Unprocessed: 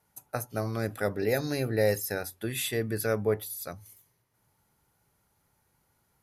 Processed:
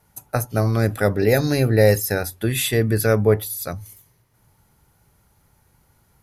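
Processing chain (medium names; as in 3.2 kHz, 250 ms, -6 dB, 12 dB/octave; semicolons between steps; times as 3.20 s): bass shelf 120 Hz +10 dB; trim +9 dB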